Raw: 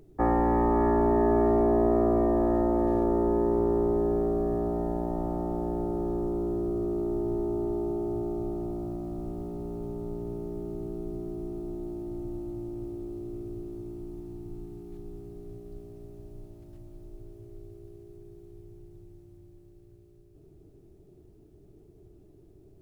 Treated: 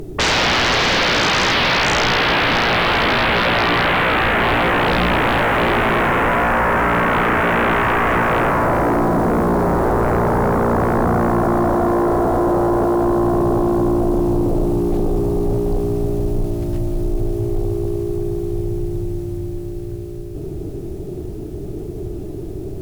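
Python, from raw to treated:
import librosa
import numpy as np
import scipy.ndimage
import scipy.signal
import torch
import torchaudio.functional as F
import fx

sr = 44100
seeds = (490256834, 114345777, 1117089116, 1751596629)

p1 = fx.rider(x, sr, range_db=4, speed_s=0.5)
p2 = x + (p1 * 10.0 ** (1.5 / 20.0))
p3 = fx.fold_sine(p2, sr, drive_db=20, ceiling_db=-7.5)
y = p3 * 10.0 ** (-5.5 / 20.0)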